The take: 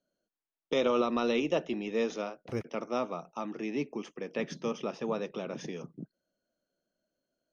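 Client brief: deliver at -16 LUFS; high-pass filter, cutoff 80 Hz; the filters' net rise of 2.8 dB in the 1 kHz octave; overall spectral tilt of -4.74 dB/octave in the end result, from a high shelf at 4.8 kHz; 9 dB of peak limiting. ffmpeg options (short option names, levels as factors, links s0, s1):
-af "highpass=80,equalizer=f=1000:t=o:g=4,highshelf=f=4800:g=-5,volume=11.2,alimiter=limit=0.631:level=0:latency=1"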